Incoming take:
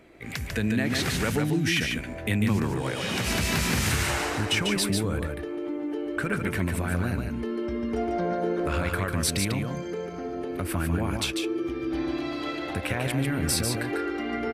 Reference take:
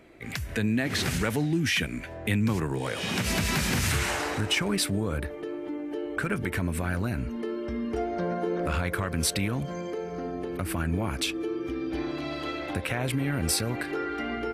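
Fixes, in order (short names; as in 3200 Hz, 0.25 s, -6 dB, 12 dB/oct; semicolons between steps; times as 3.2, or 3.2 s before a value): inverse comb 0.146 s -4.5 dB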